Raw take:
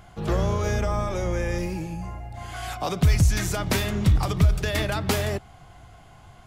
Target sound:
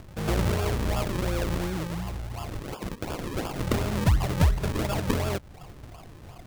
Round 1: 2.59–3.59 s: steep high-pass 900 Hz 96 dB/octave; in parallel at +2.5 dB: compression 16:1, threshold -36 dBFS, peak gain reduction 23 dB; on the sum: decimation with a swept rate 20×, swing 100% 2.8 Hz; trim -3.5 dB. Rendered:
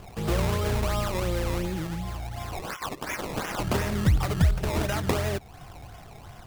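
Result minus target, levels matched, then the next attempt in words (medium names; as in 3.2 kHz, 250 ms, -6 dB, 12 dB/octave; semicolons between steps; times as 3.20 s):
decimation with a swept rate: distortion -4 dB
2.59–3.59 s: steep high-pass 900 Hz 96 dB/octave; in parallel at +2.5 dB: compression 16:1, threshold -36 dBFS, peak gain reduction 23 dB; on the sum: decimation with a swept rate 43×, swing 100% 2.8 Hz; trim -3.5 dB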